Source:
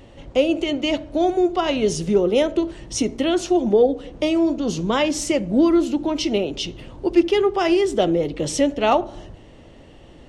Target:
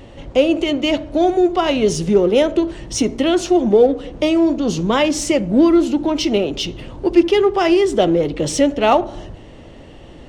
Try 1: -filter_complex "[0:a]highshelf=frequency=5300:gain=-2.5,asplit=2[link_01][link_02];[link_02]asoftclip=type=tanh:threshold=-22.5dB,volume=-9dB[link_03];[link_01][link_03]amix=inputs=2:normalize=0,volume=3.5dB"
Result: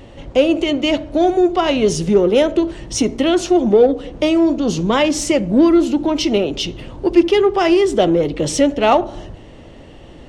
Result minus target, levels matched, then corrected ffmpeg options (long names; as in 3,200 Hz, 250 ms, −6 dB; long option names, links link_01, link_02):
soft clipping: distortion −4 dB
-filter_complex "[0:a]highshelf=frequency=5300:gain=-2.5,asplit=2[link_01][link_02];[link_02]asoftclip=type=tanh:threshold=-31.5dB,volume=-9dB[link_03];[link_01][link_03]amix=inputs=2:normalize=0,volume=3.5dB"